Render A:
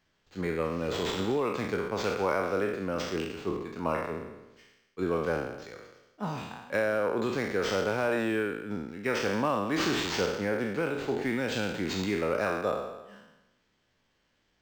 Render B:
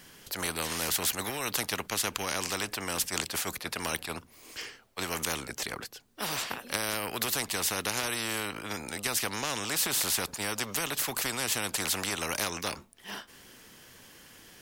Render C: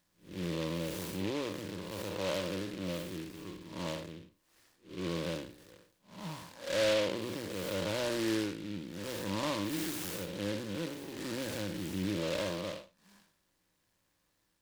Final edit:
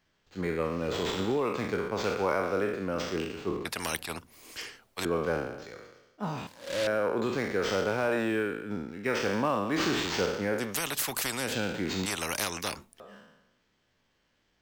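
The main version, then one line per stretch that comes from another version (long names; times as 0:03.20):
A
0:03.65–0:05.05: punch in from B
0:06.47–0:06.87: punch in from C
0:10.66–0:11.45: punch in from B, crossfade 0.24 s
0:12.06–0:13.00: punch in from B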